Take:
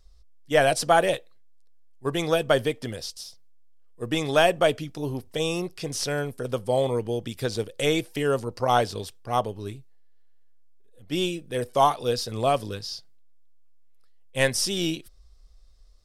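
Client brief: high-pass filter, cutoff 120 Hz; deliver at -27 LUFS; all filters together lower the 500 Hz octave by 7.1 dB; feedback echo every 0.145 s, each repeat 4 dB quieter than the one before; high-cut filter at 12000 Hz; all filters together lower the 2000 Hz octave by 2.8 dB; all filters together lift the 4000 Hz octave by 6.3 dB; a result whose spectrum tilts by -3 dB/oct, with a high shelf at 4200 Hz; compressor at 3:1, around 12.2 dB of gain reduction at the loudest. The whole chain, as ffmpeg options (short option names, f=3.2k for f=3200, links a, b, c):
-af "highpass=120,lowpass=12k,equalizer=f=500:t=o:g=-9,equalizer=f=2k:t=o:g=-6.5,equalizer=f=4k:t=o:g=7.5,highshelf=f=4.2k:g=5.5,acompressor=threshold=-34dB:ratio=3,aecho=1:1:145|290|435|580|725|870|1015|1160|1305:0.631|0.398|0.25|0.158|0.0994|0.0626|0.0394|0.0249|0.0157,volume=7dB"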